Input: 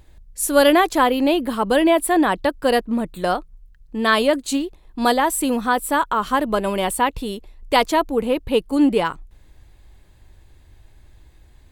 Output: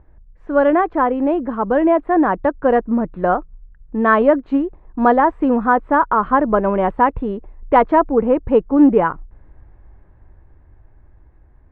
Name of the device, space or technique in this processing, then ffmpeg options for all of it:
action camera in a waterproof case: -af "lowpass=f=1600:w=0.5412,lowpass=f=1600:w=1.3066,dynaudnorm=f=370:g=11:m=3.76" -ar 44100 -c:a aac -b:a 96k

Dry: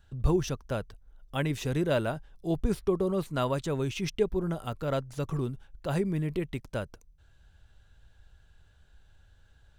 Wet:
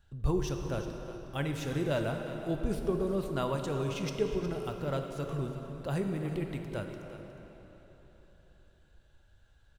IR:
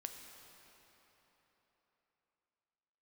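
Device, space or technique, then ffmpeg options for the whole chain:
cave: -filter_complex "[0:a]aecho=1:1:362:0.211[s0];[1:a]atrim=start_sample=2205[s1];[s0][s1]afir=irnorm=-1:irlink=0"

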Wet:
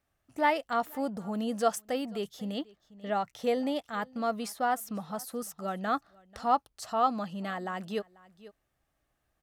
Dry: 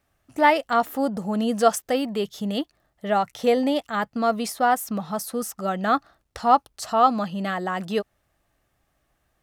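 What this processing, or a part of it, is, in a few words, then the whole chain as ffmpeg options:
ducked delay: -filter_complex "[0:a]asplit=3[s0][s1][s2];[s1]adelay=490,volume=0.422[s3];[s2]apad=whole_len=437385[s4];[s3][s4]sidechaincompress=threshold=0.01:ratio=5:attack=9.2:release=681[s5];[s0][s5]amix=inputs=2:normalize=0,asettb=1/sr,asplit=3[s6][s7][s8];[s6]atrim=end=2.544[s9];[s7]atrim=start=2.54:end=3.35,asetpts=PTS-STARTPTS,afade=t=in:d=0.004:c=qsin,afade=t=out:st=0.806:d=0.004:c=qsin,equalizer=f=11000:w=2.1:g=-12[s10];[s8]atrim=start=3.346[s11];[s9][s10]acrossfade=d=0.004:c1=hsin:c2=qsin[s12];[s12][s11]acrossfade=d=0.004:c1=qsin:c2=hsin,volume=0.376"

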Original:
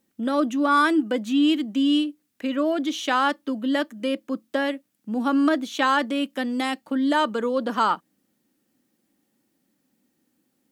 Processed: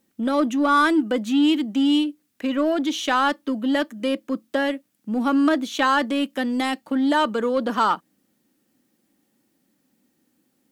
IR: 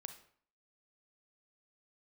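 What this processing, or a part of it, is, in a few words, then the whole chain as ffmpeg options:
parallel distortion: -filter_complex "[0:a]asplit=2[s0][s1];[s1]asoftclip=type=hard:threshold=0.0596,volume=0.398[s2];[s0][s2]amix=inputs=2:normalize=0"

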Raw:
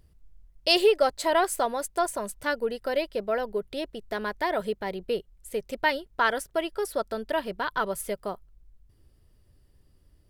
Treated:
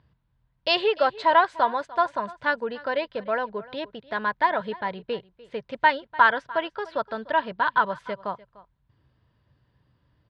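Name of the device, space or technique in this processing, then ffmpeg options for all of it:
guitar cabinet: -af "highpass=100,equalizer=f=130:t=q:w=4:g=8,equalizer=f=380:t=q:w=4:g=-7,equalizer=f=990:t=q:w=4:g=10,equalizer=f=1600:t=q:w=4:g=7,equalizer=f=3700:t=q:w=4:g=3,lowpass=f=4000:w=0.5412,lowpass=f=4000:w=1.3066,aecho=1:1:297:0.1"

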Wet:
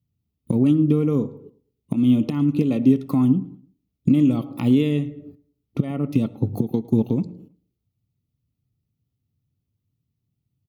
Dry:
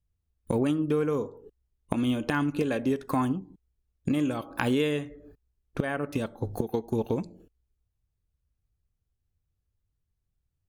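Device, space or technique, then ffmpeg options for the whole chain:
PA system with an anti-feedback notch: -filter_complex "[0:a]highpass=120,asuperstop=centerf=1600:order=8:qfactor=3.8,alimiter=limit=0.133:level=0:latency=1:release=301,equalizer=f=125:t=o:w=1:g=10,equalizer=f=250:t=o:w=1:g=8,equalizer=f=500:t=o:w=1:g=-4,equalizer=f=1000:t=o:w=1:g=-6,equalizer=f=2000:t=o:w=1:g=-4,equalizer=f=8000:t=o:w=1:g=-9,asplit=2[s0][s1];[s1]adelay=108,lowpass=f=4000:p=1,volume=0.0891,asplit=2[s2][s3];[s3]adelay=108,lowpass=f=4000:p=1,volume=0.39,asplit=2[s4][s5];[s5]adelay=108,lowpass=f=4000:p=1,volume=0.39[s6];[s0][s2][s4][s6]amix=inputs=4:normalize=0,volume=1.68"

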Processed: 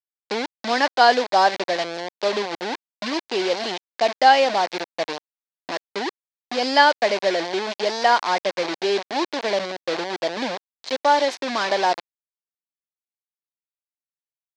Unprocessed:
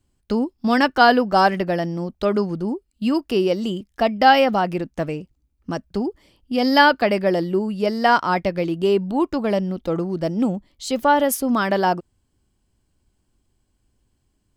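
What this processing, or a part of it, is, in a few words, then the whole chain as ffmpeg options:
hand-held game console: -af "acrusher=bits=3:mix=0:aa=0.000001,highpass=490,equalizer=f=1300:t=q:w=4:g=-8,equalizer=f=2800:t=q:w=4:g=-4,equalizer=f=4200:t=q:w=4:g=3,lowpass=f=5200:w=0.5412,lowpass=f=5200:w=1.3066,volume=1.12"

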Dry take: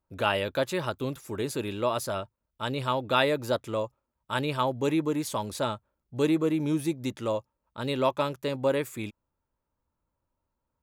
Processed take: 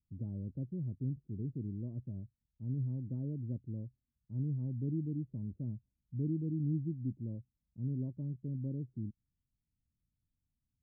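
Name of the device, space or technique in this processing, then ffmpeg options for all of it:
the neighbour's flat through the wall: -af "lowpass=f=240:w=0.5412,lowpass=f=240:w=1.3066,equalizer=f=130:t=o:w=0.77:g=4,volume=0.708"

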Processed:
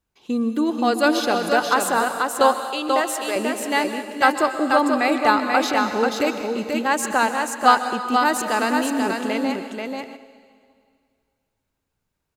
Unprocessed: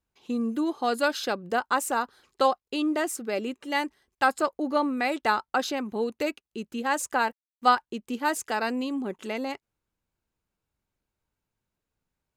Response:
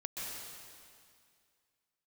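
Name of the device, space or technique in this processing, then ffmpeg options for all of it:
keyed gated reverb: -filter_complex "[0:a]asplit=3[s0][s1][s2];[1:a]atrim=start_sample=2205[s3];[s1][s3]afir=irnorm=-1:irlink=0[s4];[s2]apad=whole_len=545377[s5];[s4][s5]sidechaingate=range=0.447:threshold=0.00355:ratio=16:detection=peak,volume=0.562[s6];[s0][s6]amix=inputs=2:normalize=0,asettb=1/sr,asplit=3[s7][s8][s9];[s7]atrim=end=2.604[s10];[s8]atrim=start=2.6:end=3.36,asetpts=PTS-STARTPTS,afade=t=in:d=0.004:c=qsin,afade=t=out:st=0.756:d=0.004:c=qsin,highpass=500[s11];[s9]atrim=start=3.356[s12];[s10][s11]acrossfade=d=0.004:c1=hsin:c2=qsin[s13];[s13][s12]acrossfade=d=0.004:c1=qsin:c2=hsin,aecho=1:1:486:0.631,volume=1.41"

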